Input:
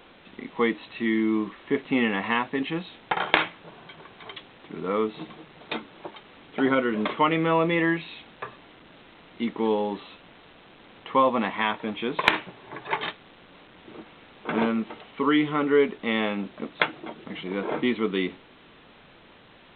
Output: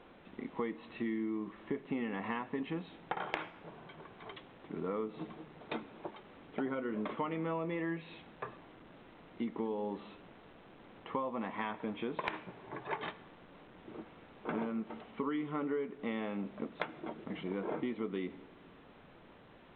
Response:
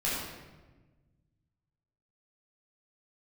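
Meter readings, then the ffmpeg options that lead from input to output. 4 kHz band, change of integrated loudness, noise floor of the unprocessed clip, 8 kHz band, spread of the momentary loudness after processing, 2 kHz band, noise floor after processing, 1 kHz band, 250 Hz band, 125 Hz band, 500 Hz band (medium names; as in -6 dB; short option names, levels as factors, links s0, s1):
-18.5 dB, -13.5 dB, -53 dBFS, no reading, 20 LU, -16.5 dB, -58 dBFS, -13.5 dB, -11.5 dB, -10.0 dB, -12.5 dB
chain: -filter_complex "[0:a]lowpass=f=1200:p=1,acompressor=threshold=0.0316:ratio=6,asplit=2[s0][s1];[1:a]atrim=start_sample=2205,adelay=75[s2];[s1][s2]afir=irnorm=-1:irlink=0,volume=0.0447[s3];[s0][s3]amix=inputs=2:normalize=0,volume=0.668"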